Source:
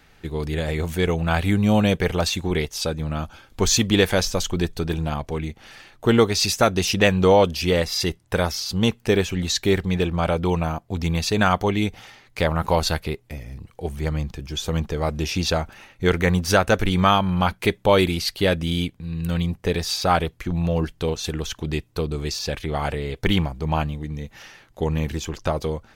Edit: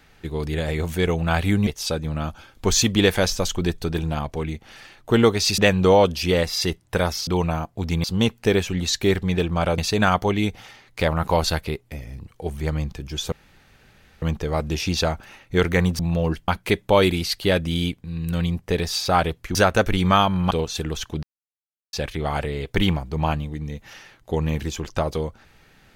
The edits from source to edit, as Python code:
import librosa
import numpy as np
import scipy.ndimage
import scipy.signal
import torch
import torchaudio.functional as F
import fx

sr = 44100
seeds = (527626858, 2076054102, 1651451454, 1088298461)

y = fx.edit(x, sr, fx.cut(start_s=1.67, length_s=0.95),
    fx.cut(start_s=6.53, length_s=0.44),
    fx.move(start_s=10.4, length_s=0.77, to_s=8.66),
    fx.insert_room_tone(at_s=14.71, length_s=0.9),
    fx.swap(start_s=16.48, length_s=0.96, other_s=20.51, other_length_s=0.49),
    fx.silence(start_s=21.72, length_s=0.7), tone=tone)